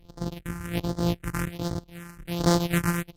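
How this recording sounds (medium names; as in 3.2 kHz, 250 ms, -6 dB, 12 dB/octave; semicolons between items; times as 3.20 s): a buzz of ramps at a fixed pitch in blocks of 256 samples; phasing stages 4, 1.3 Hz, lowest notch 590–2500 Hz; AAC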